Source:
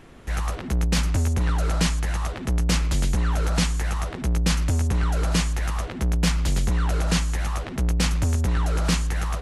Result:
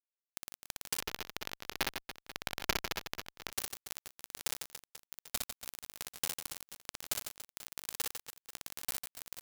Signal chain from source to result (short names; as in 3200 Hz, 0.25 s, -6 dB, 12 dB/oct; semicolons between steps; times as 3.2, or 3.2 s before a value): pre-emphasis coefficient 0.97; notches 60/120/180/240/300/360/420 Hz; dynamic EQ 2100 Hz, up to -3 dB, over -54 dBFS, Q 3.5; compressor 2.5:1, threshold -42 dBFS, peak gain reduction 10 dB; bit-crush 5-bit; reverse bouncing-ball echo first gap 60 ms, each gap 1.5×, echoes 5; 1–3.52 running maximum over 5 samples; gain +8.5 dB